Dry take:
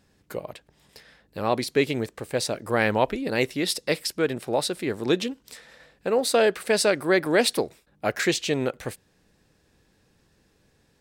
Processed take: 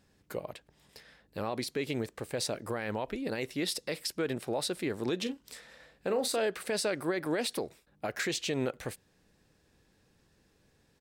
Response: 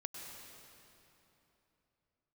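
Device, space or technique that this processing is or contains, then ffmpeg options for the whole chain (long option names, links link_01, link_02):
stacked limiters: -filter_complex "[0:a]alimiter=limit=-11.5dB:level=0:latency=1:release=398,alimiter=limit=-18.5dB:level=0:latency=1:release=48,asplit=3[link_01][link_02][link_03];[link_01]afade=type=out:start_time=5.25:duration=0.02[link_04];[link_02]asplit=2[link_05][link_06];[link_06]adelay=36,volume=-10dB[link_07];[link_05][link_07]amix=inputs=2:normalize=0,afade=type=in:start_time=5.25:duration=0.02,afade=type=out:start_time=6.39:duration=0.02[link_08];[link_03]afade=type=in:start_time=6.39:duration=0.02[link_09];[link_04][link_08][link_09]amix=inputs=3:normalize=0,volume=-4dB"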